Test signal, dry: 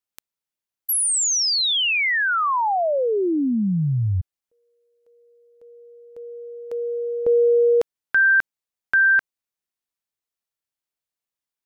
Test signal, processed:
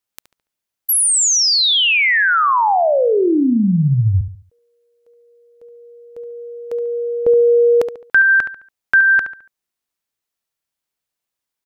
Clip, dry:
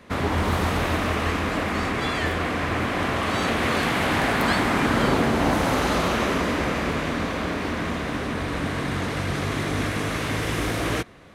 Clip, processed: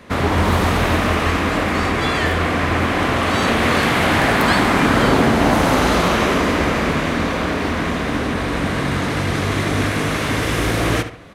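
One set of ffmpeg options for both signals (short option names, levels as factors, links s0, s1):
-filter_complex "[0:a]asplit=2[s0][s1];[s1]adelay=71,lowpass=f=4100:p=1,volume=0.316,asplit=2[s2][s3];[s3]adelay=71,lowpass=f=4100:p=1,volume=0.36,asplit=2[s4][s5];[s5]adelay=71,lowpass=f=4100:p=1,volume=0.36,asplit=2[s6][s7];[s7]adelay=71,lowpass=f=4100:p=1,volume=0.36[s8];[s0][s2][s4][s6][s8]amix=inputs=5:normalize=0,volume=2"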